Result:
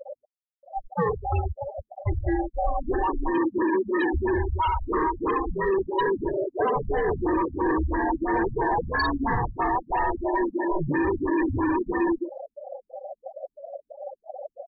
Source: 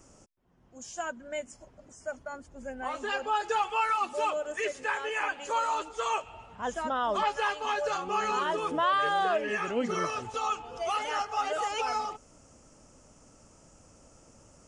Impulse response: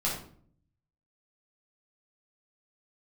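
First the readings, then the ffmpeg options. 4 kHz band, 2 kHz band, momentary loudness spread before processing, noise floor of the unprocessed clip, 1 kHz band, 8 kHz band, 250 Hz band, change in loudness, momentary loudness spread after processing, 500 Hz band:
−7.0 dB, +2.0 dB, 12 LU, −59 dBFS, +2.5 dB, below −35 dB, +16.0 dB, +4.5 dB, 15 LU, +7.0 dB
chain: -af "afftfilt=real='real(if(lt(b,1008),b+24*(1-2*mod(floor(b/24),2)),b),0)':imag='imag(if(lt(b,1008),b+24*(1-2*mod(floor(b/24),2)),b),0)':win_size=2048:overlap=0.75,firequalizer=gain_entry='entry(140,0);entry(220,-8);entry(350,12);entry(3200,-19)':delay=0.05:min_phase=1,aecho=1:1:69.97|119.5:0.631|0.251,apsyclip=23.5dB,flanger=delay=2.4:depth=8.9:regen=-79:speed=0.49:shape=triangular,bandreject=frequency=50:width_type=h:width=6,bandreject=frequency=100:width_type=h:width=6,bandreject=frequency=150:width_type=h:width=6,bandreject=frequency=200:width_type=h:width=6,bandreject=frequency=250:width_type=h:width=6,bandreject=frequency=300:width_type=h:width=6,bandreject=frequency=350:width_type=h:width=6,bandreject=frequency=400:width_type=h:width=6,bandreject=frequency=450:width_type=h:width=6,asoftclip=type=hard:threshold=-7.5dB,afftfilt=real='re*gte(hypot(re,im),0.2)':imag='im*gte(hypot(re,im),0.2)':win_size=1024:overlap=0.75,asubboost=boost=4:cutoff=57,acompressor=threshold=-17dB:ratio=16,aexciter=amount=14:drive=2.2:freq=3400,afftfilt=real='re*lt(b*sr/1024,250*pow(7600/250,0.5+0.5*sin(2*PI*3*pts/sr)))':imag='im*lt(b*sr/1024,250*pow(7600/250,0.5+0.5*sin(2*PI*3*pts/sr)))':win_size=1024:overlap=0.75,volume=-3.5dB"

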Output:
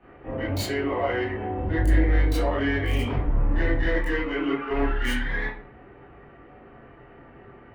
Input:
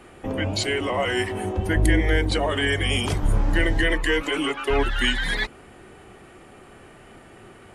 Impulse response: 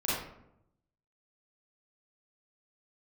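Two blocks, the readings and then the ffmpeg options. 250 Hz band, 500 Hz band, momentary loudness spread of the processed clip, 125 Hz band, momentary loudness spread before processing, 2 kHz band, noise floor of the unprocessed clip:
−1.0 dB, −2.5 dB, 7 LU, −1.0 dB, 6 LU, −5.0 dB, −48 dBFS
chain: -filter_complex "[0:a]acrossover=split=480|2700[link_01][link_02][link_03];[link_03]acrusher=bits=3:mix=0:aa=0.000001[link_04];[link_01][link_02][link_04]amix=inputs=3:normalize=0,asoftclip=type=tanh:threshold=-15.5dB[link_05];[1:a]atrim=start_sample=2205,asetrate=79380,aresample=44100[link_06];[link_05][link_06]afir=irnorm=-1:irlink=0,volume=-5.5dB"

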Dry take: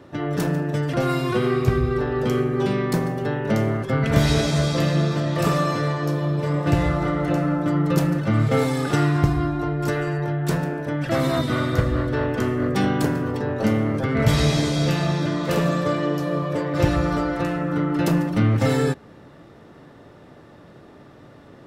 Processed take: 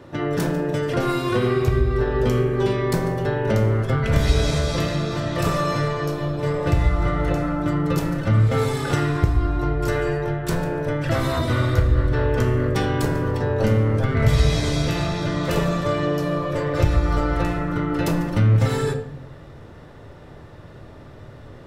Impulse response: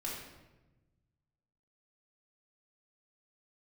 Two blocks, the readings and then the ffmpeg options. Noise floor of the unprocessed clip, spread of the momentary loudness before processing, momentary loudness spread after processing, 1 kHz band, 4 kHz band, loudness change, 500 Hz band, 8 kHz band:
−47 dBFS, 5 LU, 5 LU, 0.0 dB, −0.5 dB, +0.5 dB, +1.0 dB, −0.5 dB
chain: -filter_complex "[0:a]asubboost=boost=4:cutoff=100,acompressor=threshold=-21dB:ratio=2,asplit=2[link_01][link_02];[1:a]atrim=start_sample=2205,asetrate=70560,aresample=44100[link_03];[link_02][link_03]afir=irnorm=-1:irlink=0,volume=-1.5dB[link_04];[link_01][link_04]amix=inputs=2:normalize=0"

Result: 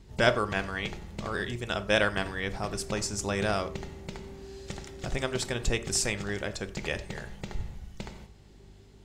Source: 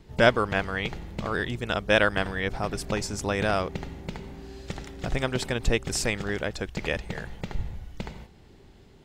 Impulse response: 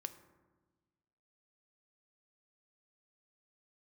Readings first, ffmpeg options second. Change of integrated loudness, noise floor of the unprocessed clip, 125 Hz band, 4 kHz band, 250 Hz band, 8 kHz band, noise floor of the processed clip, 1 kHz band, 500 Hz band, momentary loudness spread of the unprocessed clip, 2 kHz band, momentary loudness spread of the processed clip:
−3.5 dB, −53 dBFS, −3.5 dB, −1.5 dB, −4.0 dB, +2.5 dB, −53 dBFS, −4.0 dB, −4.0 dB, 17 LU, −3.5 dB, 18 LU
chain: -filter_complex "[0:a]equalizer=frequency=7300:width=0.75:gain=7,aeval=exprs='val(0)+0.00282*(sin(2*PI*50*n/s)+sin(2*PI*2*50*n/s)/2+sin(2*PI*3*50*n/s)/3+sin(2*PI*4*50*n/s)/4+sin(2*PI*5*50*n/s)/5)':channel_layout=same[link_01];[1:a]atrim=start_sample=2205,afade=type=out:start_time=0.17:duration=0.01,atrim=end_sample=7938,asetrate=48510,aresample=44100[link_02];[link_01][link_02]afir=irnorm=-1:irlink=0"

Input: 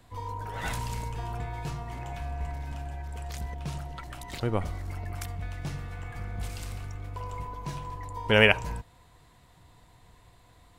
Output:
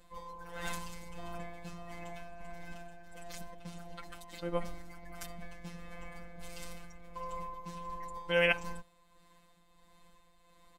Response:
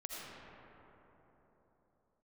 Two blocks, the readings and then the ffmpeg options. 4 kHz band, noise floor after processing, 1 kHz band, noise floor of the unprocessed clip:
−9.5 dB, −64 dBFS, −7.0 dB, −58 dBFS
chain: -af "tremolo=f=1.5:d=0.45,afftfilt=real='hypot(re,im)*cos(PI*b)':imag='0':win_size=1024:overlap=0.75,aecho=1:1:3.9:0.75,volume=-2.5dB"

